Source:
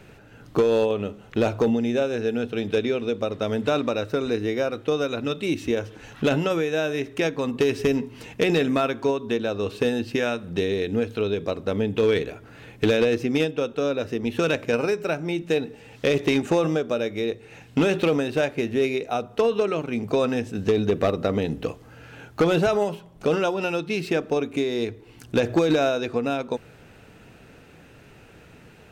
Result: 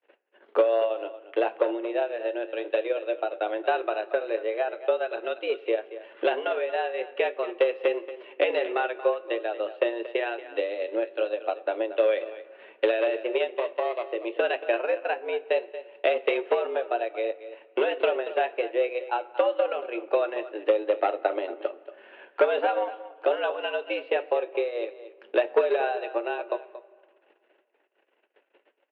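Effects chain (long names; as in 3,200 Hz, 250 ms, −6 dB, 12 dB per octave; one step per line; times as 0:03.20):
0:13.55–0:14.07: lower of the sound and its delayed copy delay 0.33 ms
noise gate −46 dBFS, range −30 dB
transient designer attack +5 dB, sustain −8 dB
flanger 0.18 Hz, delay 8.7 ms, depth 1.4 ms, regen −65%
tape wow and flutter 28 cents
single-tap delay 231 ms −14.5 dB
on a send at −19.5 dB: convolution reverb RT60 2.0 s, pre-delay 6 ms
on the sum: single-sideband voice off tune +110 Hz 250–3,100 Hz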